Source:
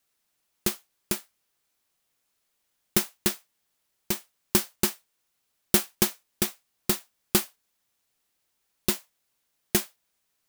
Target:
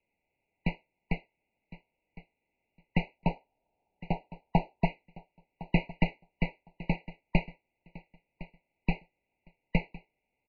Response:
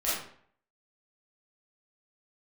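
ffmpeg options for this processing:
-filter_complex "[0:a]asettb=1/sr,asplit=3[a][b][c];[a]atrim=end=3.184[d];[b]atrim=start=3.18:end=4.85,asetpts=PTS-STARTPTS,afade=t=in:d=0.004:c=qsin,afade=t=out:st=1.666:d=0.004:c=qsin,equalizer=f=125:t=o:w=1:g=6,equalizer=f=1k:t=o:w=1:g=10,equalizer=f=2k:t=o:w=1:g=-11[e];[c]atrim=start=4.846[f];[d][e]acrossfade=d=0.004:c1=hsin:c2=qsin[g];[g][f]acrossfade=d=0.004:c1=qsin:c2=hsin,asplit=2[h][i];[i]asoftclip=type=tanh:threshold=-20dB,volume=-5dB[j];[h][j]amix=inputs=2:normalize=0,highpass=f=150:t=q:w=0.5412,highpass=f=150:t=q:w=1.307,lowpass=f=2.9k:t=q:w=0.5176,lowpass=f=2.9k:t=q:w=0.7071,lowpass=f=2.9k:t=q:w=1.932,afreqshift=-190,aecho=1:1:1059|2118:0.126|0.0201,afftfilt=real='re*eq(mod(floor(b*sr/1024/970),2),0)':imag='im*eq(mod(floor(b*sr/1024/970),2),0)':win_size=1024:overlap=0.75"

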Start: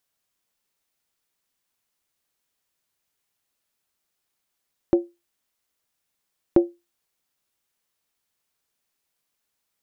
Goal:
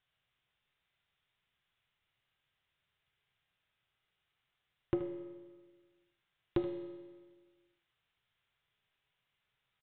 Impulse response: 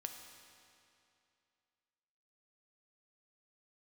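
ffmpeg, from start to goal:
-filter_complex "[0:a]equalizer=f=125:t=o:w=1:g=7,equalizer=f=250:t=o:w=1:g=-10,equalizer=f=500:t=o:w=1:g=-5,equalizer=f=1k:t=o:w=1:g=-4,acompressor=threshold=-32dB:ratio=2.5,aresample=8000,asoftclip=type=hard:threshold=-24dB,aresample=44100,aecho=1:1:77:0.211[a];[1:a]atrim=start_sample=2205,asetrate=74970,aresample=44100[b];[a][b]afir=irnorm=-1:irlink=0,volume=11dB"

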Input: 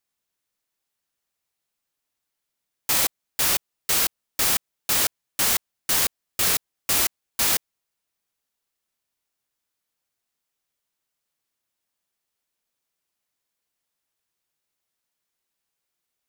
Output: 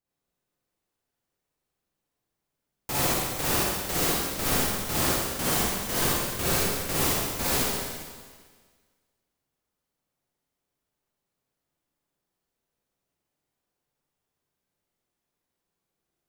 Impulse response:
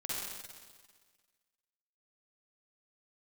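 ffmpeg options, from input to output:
-filter_complex "[0:a]tiltshelf=f=970:g=7.5[a];[1:a]atrim=start_sample=2205[b];[a][b]afir=irnorm=-1:irlink=0"

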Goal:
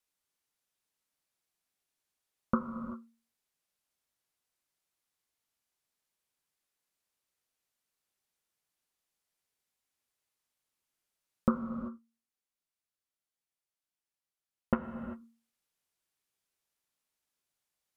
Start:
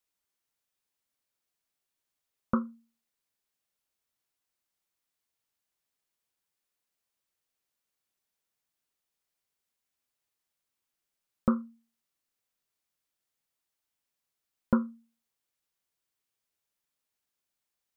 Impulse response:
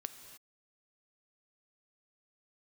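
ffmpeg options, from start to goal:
-filter_complex "[0:a]asettb=1/sr,asplit=3[a][b][c];[a]atrim=end=11.584[d];[b]atrim=start=11.58:end=14.84,asetpts=PTS-STARTPTS,afade=t=in:d=0.004:c=qsin,afade=t=out:st=3.256:d=0.004:c=qsin,aeval=exprs='0.251*(cos(1*acos(clip(val(0)/0.251,-1,1)))-cos(1*PI/2))+0.0501*(cos(3*acos(clip(val(0)/0.251,-1,1)))-cos(3*PI/2))':c=same[e];[c]atrim=start=14.836[f];[d][e]acrossfade=d=0.004:c1=hsin:c2=qsin[g];[g][f]acrossfade=d=0.004:c1=qsin:c2=hsin[h];[1:a]atrim=start_sample=2205,afade=t=out:st=0.28:d=0.01,atrim=end_sample=12789,asetrate=25578,aresample=44100[i];[h][i]afir=irnorm=-1:irlink=0"

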